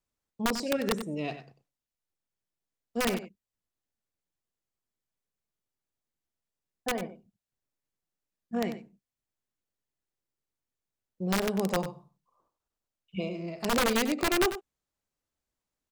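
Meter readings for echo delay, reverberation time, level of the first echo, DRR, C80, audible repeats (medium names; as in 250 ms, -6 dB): 95 ms, no reverb, -12.0 dB, no reverb, no reverb, 1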